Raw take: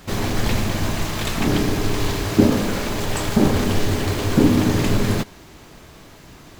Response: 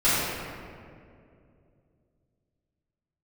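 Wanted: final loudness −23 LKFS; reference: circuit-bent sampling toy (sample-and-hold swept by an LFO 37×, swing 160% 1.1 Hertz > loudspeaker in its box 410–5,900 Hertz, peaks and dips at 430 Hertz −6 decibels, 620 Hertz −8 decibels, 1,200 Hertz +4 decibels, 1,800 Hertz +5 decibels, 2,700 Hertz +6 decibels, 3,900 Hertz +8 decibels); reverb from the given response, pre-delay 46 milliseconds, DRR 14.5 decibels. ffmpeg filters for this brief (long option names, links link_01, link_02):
-filter_complex "[0:a]asplit=2[link_01][link_02];[1:a]atrim=start_sample=2205,adelay=46[link_03];[link_02][link_03]afir=irnorm=-1:irlink=0,volume=-32dB[link_04];[link_01][link_04]amix=inputs=2:normalize=0,acrusher=samples=37:mix=1:aa=0.000001:lfo=1:lforange=59.2:lforate=1.1,highpass=410,equalizer=frequency=430:width_type=q:width=4:gain=-6,equalizer=frequency=620:width_type=q:width=4:gain=-8,equalizer=frequency=1200:width_type=q:width=4:gain=4,equalizer=frequency=1800:width_type=q:width=4:gain=5,equalizer=frequency=2700:width_type=q:width=4:gain=6,equalizer=frequency=3900:width_type=q:width=4:gain=8,lowpass=frequency=5900:width=0.5412,lowpass=frequency=5900:width=1.3066,volume=1.5dB"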